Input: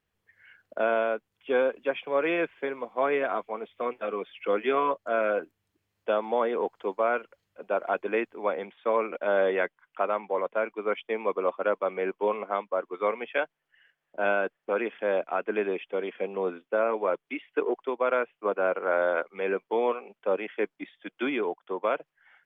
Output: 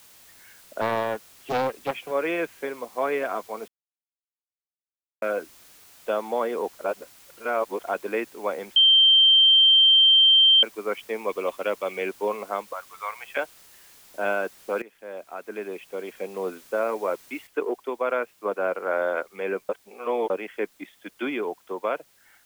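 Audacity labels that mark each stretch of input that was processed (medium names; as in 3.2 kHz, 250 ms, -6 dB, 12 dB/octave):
0.810000	2.110000	loudspeaker Doppler distortion depth 0.6 ms
3.680000	5.220000	mute
6.790000	7.840000	reverse
8.760000	10.630000	bleep 3.14 kHz -12.5 dBFS
11.290000	12.090000	resonant high shelf 2 kHz +8.5 dB, Q 1.5
12.730000	13.370000	high-pass 840 Hz 24 dB/octave
14.820000	16.590000	fade in linear, from -18 dB
17.470000	17.470000	noise floor step -52 dB -61 dB
19.690000	20.300000	reverse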